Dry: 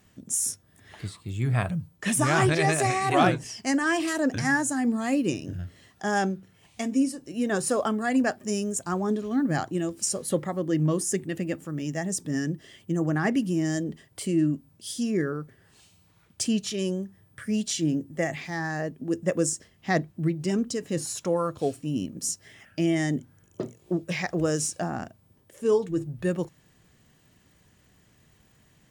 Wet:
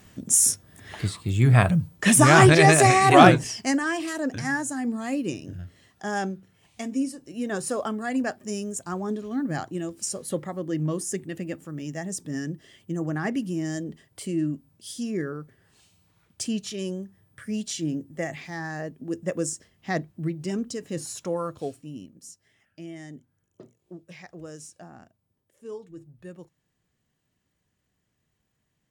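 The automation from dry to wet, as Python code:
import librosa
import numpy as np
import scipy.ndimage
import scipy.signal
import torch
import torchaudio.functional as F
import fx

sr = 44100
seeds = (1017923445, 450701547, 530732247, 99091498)

y = fx.gain(x, sr, db=fx.line((3.39, 8.0), (3.93, -3.0), (21.53, -3.0), (22.24, -15.5)))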